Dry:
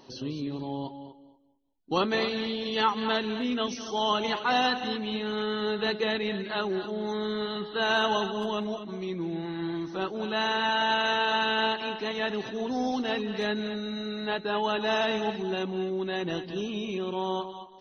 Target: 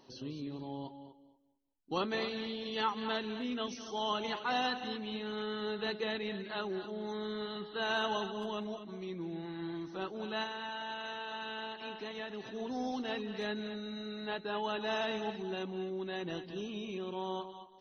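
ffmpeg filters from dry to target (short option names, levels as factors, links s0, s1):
-filter_complex "[0:a]asettb=1/sr,asplit=3[s0][s1][s2];[s0]atrim=end=10.434[s3];[s1]atrim=start=10.43:end=12.53,asetpts=PTS-STARTPTS,afade=t=in:d=0.004:c=qsin,afade=t=out:st=2.096:d=0.004:c=qsin,acompressor=threshold=0.0316:ratio=6[s4];[s2]atrim=start=12.526[s5];[s3][s4]acrossfade=d=0.004:c1=hsin:c2=qsin[s6];[s6][s5]acrossfade=d=0.004:c1=qsin:c2=hsin,volume=0.398"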